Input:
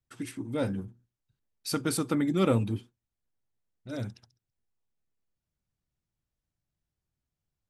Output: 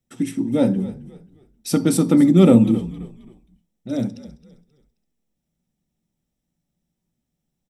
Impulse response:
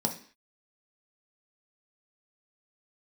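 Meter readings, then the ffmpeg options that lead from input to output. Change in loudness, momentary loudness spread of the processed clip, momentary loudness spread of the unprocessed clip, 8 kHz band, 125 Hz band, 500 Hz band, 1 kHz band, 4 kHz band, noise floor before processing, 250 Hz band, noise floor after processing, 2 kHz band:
+13.0 dB, 18 LU, 15 LU, +7.5 dB, +11.0 dB, +10.5 dB, +4.5 dB, +4.5 dB, under -85 dBFS, +15.0 dB, -79 dBFS, +3.5 dB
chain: -filter_complex "[0:a]equalizer=f=1.5k:w=3.6:g=-8,asplit=4[a][b][c][d];[b]adelay=266,afreqshift=-50,volume=-17dB[e];[c]adelay=532,afreqshift=-100,volume=-25.6dB[f];[d]adelay=798,afreqshift=-150,volume=-34.3dB[g];[a][e][f][g]amix=inputs=4:normalize=0,asplit=2[h][i];[1:a]atrim=start_sample=2205,lowshelf=f=330:g=8.5[j];[i][j]afir=irnorm=-1:irlink=0,volume=-12.5dB[k];[h][k]amix=inputs=2:normalize=0,volume=5dB"

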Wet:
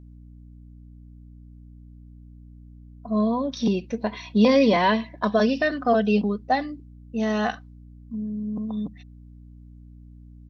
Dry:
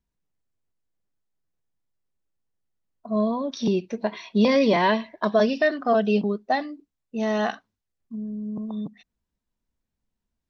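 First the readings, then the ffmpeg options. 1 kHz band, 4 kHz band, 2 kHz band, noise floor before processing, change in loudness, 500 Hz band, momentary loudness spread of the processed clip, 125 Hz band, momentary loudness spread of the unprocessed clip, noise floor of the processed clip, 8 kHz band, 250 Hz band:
+1.0 dB, +0.5 dB, 0.0 dB, -84 dBFS, +0.5 dB, -0.5 dB, 15 LU, +2.0 dB, 15 LU, -46 dBFS, n/a, +2.0 dB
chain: -af "aecho=1:1:4:0.37,aeval=exprs='val(0)+0.00631*(sin(2*PI*60*n/s)+sin(2*PI*2*60*n/s)/2+sin(2*PI*3*60*n/s)/3+sin(2*PI*4*60*n/s)/4+sin(2*PI*5*60*n/s)/5)':c=same"

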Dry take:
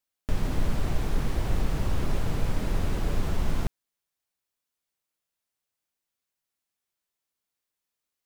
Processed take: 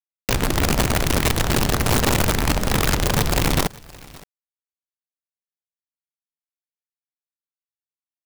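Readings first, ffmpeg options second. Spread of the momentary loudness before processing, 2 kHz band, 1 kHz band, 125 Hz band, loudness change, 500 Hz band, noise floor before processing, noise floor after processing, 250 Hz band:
3 LU, +16.5 dB, +14.5 dB, +8.0 dB, +11.0 dB, +12.5 dB, under -85 dBFS, under -85 dBFS, +10.5 dB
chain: -af "aeval=exprs='(mod(10.6*val(0)+1,2)-1)/10.6':c=same,aecho=1:1:568:0.0708,acrusher=bits=8:mix=0:aa=0.000001,volume=6.5dB"

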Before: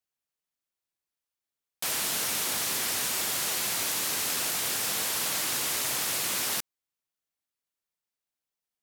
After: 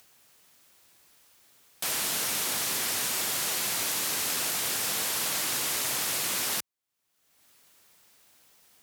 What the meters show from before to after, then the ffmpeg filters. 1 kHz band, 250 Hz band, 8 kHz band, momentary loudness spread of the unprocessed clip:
0.0 dB, 0.0 dB, 0.0 dB, 1 LU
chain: -af "highpass=57,acompressor=mode=upward:threshold=-37dB:ratio=2.5"

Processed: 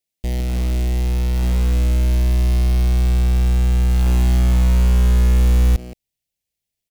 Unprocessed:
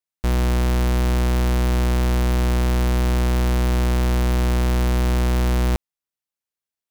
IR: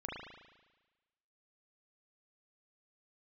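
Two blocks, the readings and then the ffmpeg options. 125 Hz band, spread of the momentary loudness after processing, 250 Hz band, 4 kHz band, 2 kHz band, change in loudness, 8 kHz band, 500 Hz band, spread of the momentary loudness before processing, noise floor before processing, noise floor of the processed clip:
+4.0 dB, 6 LU, -1.5 dB, -2.0 dB, -4.5 dB, +3.0 dB, -1.0 dB, -5.0 dB, 0 LU, under -85 dBFS, -83 dBFS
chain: -filter_complex "[0:a]asplit=2[a][b];[b]adelay=170,highpass=300,lowpass=3.4k,asoftclip=type=hard:threshold=-27.5dB,volume=-9dB[c];[a][c]amix=inputs=2:normalize=0,alimiter=level_in=4.5dB:limit=-24dB:level=0:latency=1:release=32,volume=-4.5dB,asubboost=boost=3:cutoff=170,asuperstop=centerf=1200:order=4:qfactor=0.93,acrusher=bits=4:mode=log:mix=0:aa=0.000001,volume=7.5dB"

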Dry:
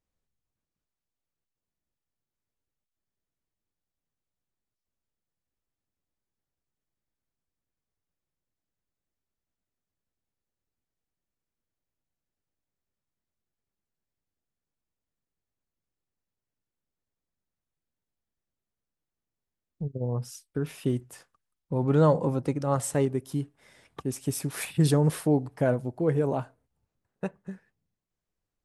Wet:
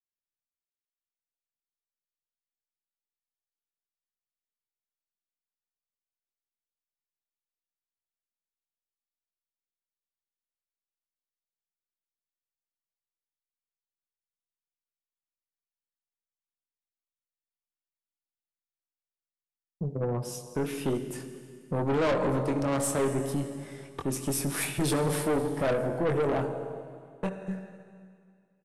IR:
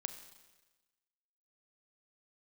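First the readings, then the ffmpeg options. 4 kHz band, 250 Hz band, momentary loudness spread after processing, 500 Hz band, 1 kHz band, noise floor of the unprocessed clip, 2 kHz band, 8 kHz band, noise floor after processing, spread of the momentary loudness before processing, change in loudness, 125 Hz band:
+2.5 dB, -2.0 dB, 13 LU, -0.5 dB, +1.0 dB, under -85 dBFS, +4.5 dB, +3.0 dB, under -85 dBFS, 15 LU, -2.0 dB, -5.5 dB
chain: -filter_complex "[0:a]equalizer=f=5.1k:t=o:w=2:g=-2.5,asplit=2[a][b];[b]adelay=22,volume=-6.5dB[c];[a][c]amix=inputs=2:normalize=0,acrossover=split=220[d][e];[d]acompressor=threshold=-36dB:ratio=6[f];[f][e]amix=inputs=2:normalize=0,agate=range=-33dB:threshold=-58dB:ratio=3:detection=peak,asplit=2[g][h];[1:a]atrim=start_sample=2205,asetrate=24696,aresample=44100[i];[h][i]afir=irnorm=-1:irlink=0,volume=7.5dB[j];[g][j]amix=inputs=2:normalize=0,aeval=exprs='(tanh(7.08*val(0)+0.25)-tanh(0.25))/7.08':c=same,aresample=32000,aresample=44100,volume=-6dB"

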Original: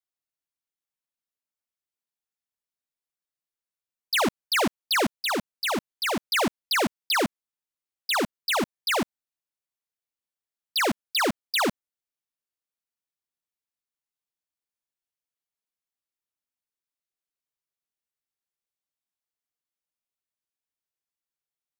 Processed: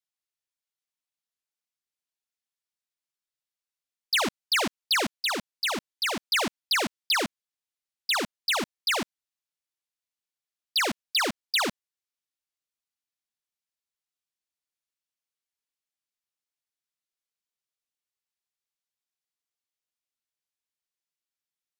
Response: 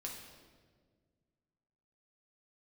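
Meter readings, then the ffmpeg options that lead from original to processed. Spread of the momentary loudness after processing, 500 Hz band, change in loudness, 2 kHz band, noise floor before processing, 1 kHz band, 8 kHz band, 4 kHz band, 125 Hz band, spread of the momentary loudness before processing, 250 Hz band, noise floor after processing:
4 LU, -5.0 dB, -1.0 dB, -0.5 dB, under -85 dBFS, -3.5 dB, 0.0 dB, +1.5 dB, -6.0 dB, 4 LU, -5.5 dB, under -85 dBFS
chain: -af "equalizer=f=4.3k:w=0.35:g=7.5,volume=-6dB"

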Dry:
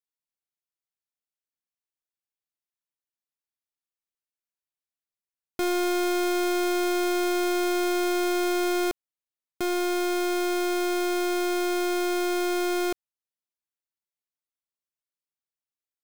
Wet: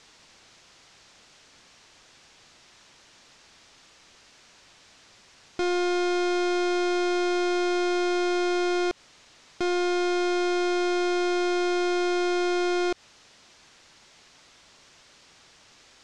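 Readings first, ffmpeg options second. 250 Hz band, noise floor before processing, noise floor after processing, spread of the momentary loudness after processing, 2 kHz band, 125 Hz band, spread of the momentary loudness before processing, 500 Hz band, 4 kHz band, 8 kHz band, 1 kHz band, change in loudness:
+0.5 dB, under -85 dBFS, -56 dBFS, 3 LU, +0.5 dB, n/a, 4 LU, +0.5 dB, +0.5 dB, -4.5 dB, +0.5 dB, +0.5 dB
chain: -af "aeval=exprs='val(0)+0.5*0.00355*sgn(val(0))':c=same,lowpass=f=6.4k:w=0.5412,lowpass=f=6.4k:w=1.3066,alimiter=level_in=7dB:limit=-24dB:level=0:latency=1:release=88,volume=-7dB,volume=8.5dB"

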